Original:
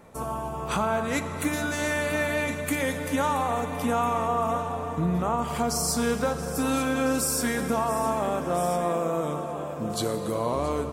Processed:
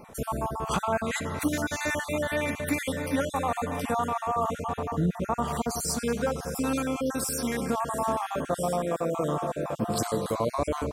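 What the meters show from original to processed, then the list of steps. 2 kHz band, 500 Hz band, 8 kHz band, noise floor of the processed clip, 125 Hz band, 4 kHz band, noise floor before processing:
−3.0 dB, −2.0 dB, −3.0 dB, −44 dBFS, −1.0 dB, −2.5 dB, −33 dBFS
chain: time-frequency cells dropped at random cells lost 33%
speech leveller within 5 dB 0.5 s

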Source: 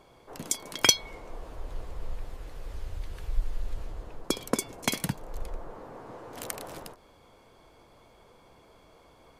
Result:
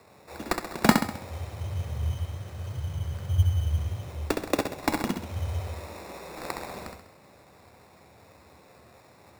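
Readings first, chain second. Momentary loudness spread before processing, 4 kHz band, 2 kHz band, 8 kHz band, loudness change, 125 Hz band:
19 LU, −6.5 dB, +2.0 dB, −10.5 dB, +1.5 dB, +13.0 dB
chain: frequency shifter +64 Hz
sample-rate reduction 3,100 Hz, jitter 0%
flutter between parallel walls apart 11.3 metres, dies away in 0.62 s
level +1.5 dB

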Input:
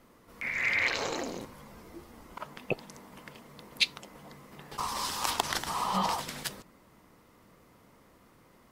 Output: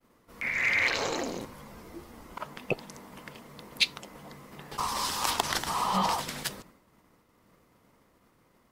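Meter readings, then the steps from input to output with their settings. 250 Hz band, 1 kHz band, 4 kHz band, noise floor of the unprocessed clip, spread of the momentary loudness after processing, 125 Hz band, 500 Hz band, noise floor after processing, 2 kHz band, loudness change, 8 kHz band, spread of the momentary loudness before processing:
+2.5 dB, +2.5 dB, +2.0 dB, −61 dBFS, 22 LU, +2.5 dB, +2.5 dB, −66 dBFS, +2.0 dB, +2.0 dB, +2.5 dB, 22 LU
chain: in parallel at −8.5 dB: hard clipping −27 dBFS, distortion −9 dB
on the sum: downward expander −50 dBFS

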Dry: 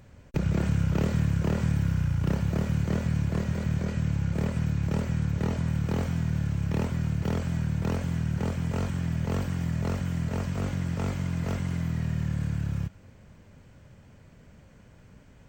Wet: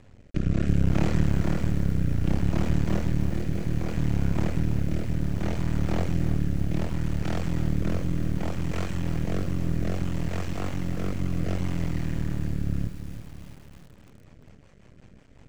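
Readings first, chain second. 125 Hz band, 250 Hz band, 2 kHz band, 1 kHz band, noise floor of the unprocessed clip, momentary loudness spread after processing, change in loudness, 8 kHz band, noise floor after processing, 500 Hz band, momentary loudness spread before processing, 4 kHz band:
−0.5 dB, +1.0 dB, 0.0 dB, +0.5 dB, −54 dBFS, 6 LU, +0.5 dB, 0.0 dB, −52 dBFS, +1.0 dB, 4 LU, +1.0 dB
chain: Bessel low-pass filter 8,000 Hz
notch filter 1,500 Hz, Q 17
half-wave rectification
rotating-speaker cabinet horn 0.65 Hz, later 5.5 Hz, at 0:13.52
feedback echo at a low word length 328 ms, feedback 55%, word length 8 bits, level −11 dB
level +6 dB

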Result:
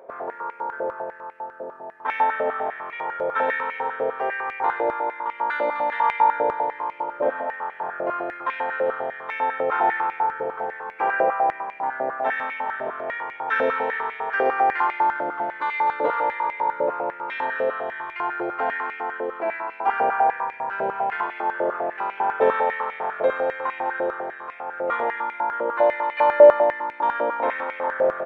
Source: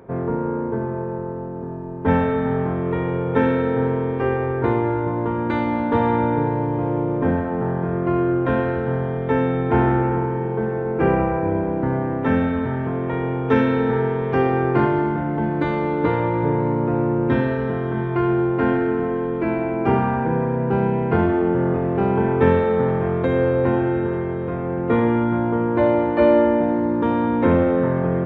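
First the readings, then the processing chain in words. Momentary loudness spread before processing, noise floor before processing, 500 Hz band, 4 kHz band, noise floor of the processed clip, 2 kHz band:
6 LU, −26 dBFS, −3.5 dB, can't be measured, −41 dBFS, +3.5 dB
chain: loudspeakers that aren't time-aligned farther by 42 metres −9 dB, 87 metres −9 dB
high-pass on a step sequencer 10 Hz 590–2,200 Hz
level −4.5 dB

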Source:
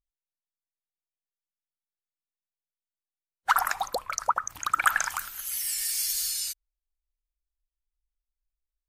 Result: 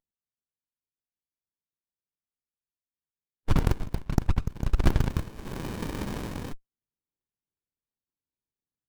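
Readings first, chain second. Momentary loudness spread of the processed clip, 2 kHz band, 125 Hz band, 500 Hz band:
12 LU, −12.5 dB, can't be measured, +4.5 dB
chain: high-pass filter 650 Hz 24 dB per octave
windowed peak hold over 65 samples
level +3 dB

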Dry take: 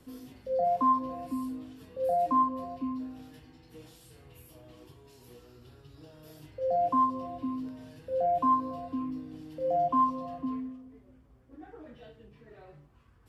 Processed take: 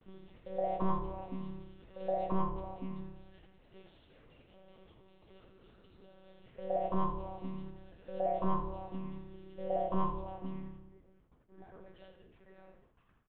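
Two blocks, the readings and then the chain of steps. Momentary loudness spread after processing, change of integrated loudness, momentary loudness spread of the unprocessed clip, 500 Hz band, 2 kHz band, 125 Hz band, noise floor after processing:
21 LU, −8.0 dB, 19 LU, −6.0 dB, can't be measured, +5.5 dB, −67 dBFS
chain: parametric band 130 Hz −7.5 dB 1.4 octaves
one-pitch LPC vocoder at 8 kHz 190 Hz
noise gate with hold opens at −53 dBFS
echo with shifted repeats 82 ms, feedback 37%, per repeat −34 Hz, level −11 dB
level −4 dB

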